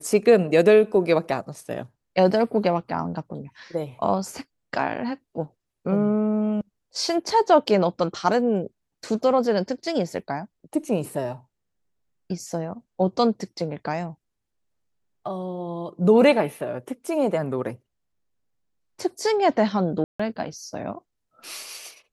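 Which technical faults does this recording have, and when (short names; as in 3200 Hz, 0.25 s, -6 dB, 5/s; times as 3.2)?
20.04–20.2 gap 0.155 s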